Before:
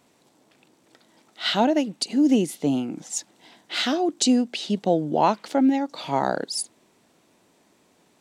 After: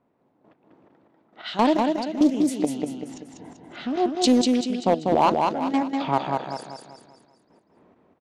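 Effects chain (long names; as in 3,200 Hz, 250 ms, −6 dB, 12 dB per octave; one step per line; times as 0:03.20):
low-pass that shuts in the quiet parts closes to 1,200 Hz, open at −17 dBFS
0:03.14–0:03.96: spectral tilt −4.5 dB per octave
in parallel at +0.5 dB: downward compressor 6 to 1, threshold −31 dBFS, peak gain reduction 16 dB
on the sum: gate pattern ".....x..xx" 170 BPM −12 dB
gain into a clipping stage and back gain 10.5 dB
on a send: repeating echo 194 ms, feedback 44%, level −3.5 dB
on the sum: highs frequency-modulated by the lows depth 0.3 ms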